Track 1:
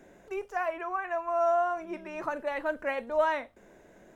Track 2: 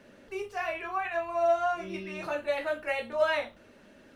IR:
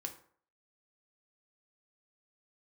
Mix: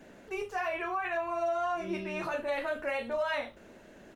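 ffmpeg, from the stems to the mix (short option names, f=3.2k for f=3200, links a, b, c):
-filter_complex "[0:a]alimiter=level_in=2dB:limit=-24dB:level=0:latency=1,volume=-2dB,volume=-0.5dB[a];[1:a]adelay=4.8,volume=-1dB[b];[a][b]amix=inputs=2:normalize=0,alimiter=limit=-24dB:level=0:latency=1:release=72"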